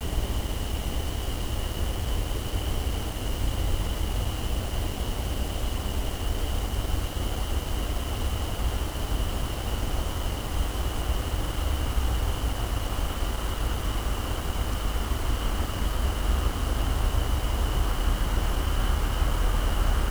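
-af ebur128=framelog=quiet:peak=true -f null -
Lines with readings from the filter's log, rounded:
Integrated loudness:
  I:         -29.7 LUFS
  Threshold: -39.7 LUFS
Loudness range:
  LRA:         2.7 LU
  Threshold: -49.8 LUFS
  LRA low:   -30.7 LUFS
  LRA high:  -28.0 LUFS
True peak:
  Peak:      -12.2 dBFS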